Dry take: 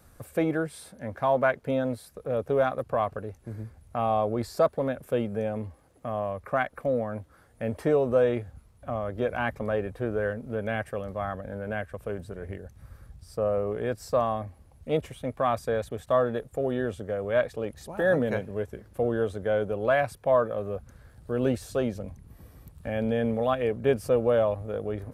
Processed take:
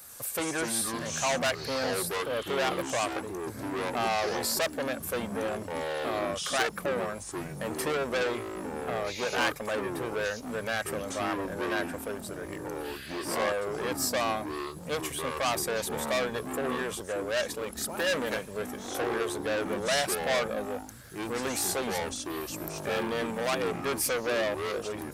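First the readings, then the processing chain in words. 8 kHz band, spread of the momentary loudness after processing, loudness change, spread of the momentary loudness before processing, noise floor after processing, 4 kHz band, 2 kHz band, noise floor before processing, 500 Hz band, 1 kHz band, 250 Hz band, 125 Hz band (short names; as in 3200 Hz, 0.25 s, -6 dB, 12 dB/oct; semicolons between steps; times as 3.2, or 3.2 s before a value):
n/a, 8 LU, -2.5 dB, 13 LU, -42 dBFS, +12.5 dB, +3.5 dB, -57 dBFS, -4.5 dB, -1.0 dB, -3.0 dB, -8.0 dB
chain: soft clip -27.5 dBFS, distortion -7 dB; echoes that change speed 93 ms, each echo -6 st, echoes 3; tilt +4 dB/oct; gain +4 dB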